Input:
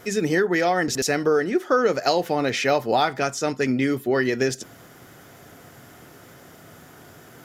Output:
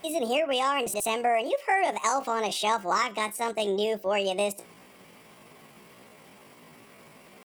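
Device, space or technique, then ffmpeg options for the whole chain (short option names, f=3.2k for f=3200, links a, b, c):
chipmunk voice: -af "asetrate=68011,aresample=44100,atempo=0.64842,volume=-5dB"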